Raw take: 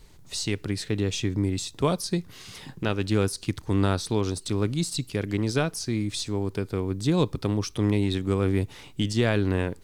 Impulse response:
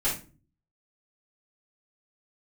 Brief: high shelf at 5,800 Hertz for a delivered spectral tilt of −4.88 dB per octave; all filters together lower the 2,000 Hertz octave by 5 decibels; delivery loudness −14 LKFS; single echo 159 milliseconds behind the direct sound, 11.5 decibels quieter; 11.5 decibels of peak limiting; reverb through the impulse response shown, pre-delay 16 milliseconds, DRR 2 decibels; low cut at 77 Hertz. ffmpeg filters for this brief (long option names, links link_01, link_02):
-filter_complex "[0:a]highpass=77,equalizer=frequency=2000:width_type=o:gain=-7.5,highshelf=frequency=5800:gain=5.5,alimiter=limit=-21dB:level=0:latency=1,aecho=1:1:159:0.266,asplit=2[link_01][link_02];[1:a]atrim=start_sample=2205,adelay=16[link_03];[link_02][link_03]afir=irnorm=-1:irlink=0,volume=-11.5dB[link_04];[link_01][link_04]amix=inputs=2:normalize=0,volume=15dB"